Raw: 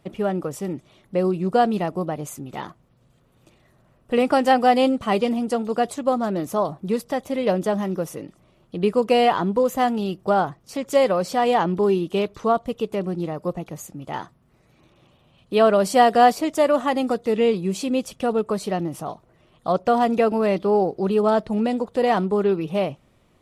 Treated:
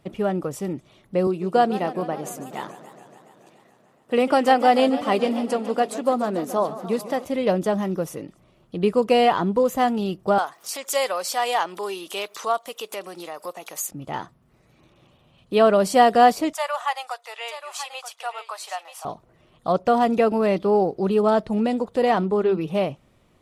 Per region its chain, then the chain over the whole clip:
0:01.27–0:07.25: high-pass filter 210 Hz + feedback echo with a swinging delay time 142 ms, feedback 76%, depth 199 cents, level −15 dB
0:10.38–0:13.91: high-pass filter 750 Hz + upward compression, threshold −30 dBFS + high-shelf EQ 5,000 Hz +11 dB
0:16.53–0:19.05: Butterworth high-pass 730 Hz + single-tap delay 932 ms −11 dB
0:22.11–0:22.58: high-shelf EQ 8,300 Hz −8.5 dB + mains-hum notches 50/100/150/200/250/300/350 Hz
whole clip: no processing

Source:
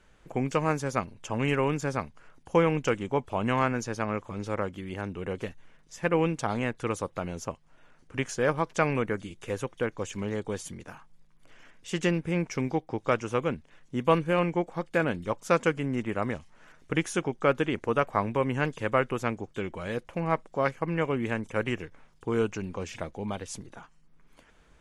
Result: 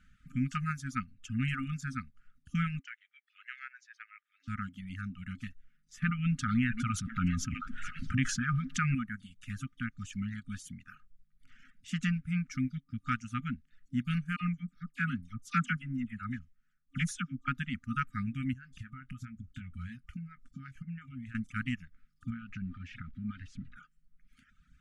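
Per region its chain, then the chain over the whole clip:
0:02.79–0:04.48: four-pole ladder high-pass 1,600 Hz, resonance 50% + high-frequency loss of the air 120 metres
0:06.02–0:08.95: high-shelf EQ 6,500 Hz −9.5 dB + echo through a band-pass that steps 219 ms, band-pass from 340 Hz, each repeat 1.4 octaves, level −9 dB + envelope flattener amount 70%
0:14.36–0:17.48: all-pass dispersion lows, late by 46 ms, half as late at 2,500 Hz + multiband upward and downward expander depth 70%
0:18.53–0:21.35: parametric band 61 Hz +12 dB 2 octaves + downward compressor 16 to 1, threshold −35 dBFS + double-tracking delay 23 ms −11 dB
0:22.30–0:23.76: converter with a step at zero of −43 dBFS + low-pass filter 2,500 Hz + downward compressor 4 to 1, threshold −31 dBFS
whole clip: brick-wall band-stop 270–1,200 Hz; reverb reduction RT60 1.2 s; high-shelf EQ 2,100 Hz −8.5 dB

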